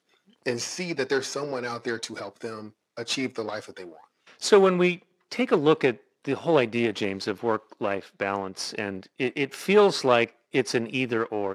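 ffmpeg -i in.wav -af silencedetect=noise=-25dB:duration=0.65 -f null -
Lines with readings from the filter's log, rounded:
silence_start: 3.59
silence_end: 4.43 | silence_duration: 0.84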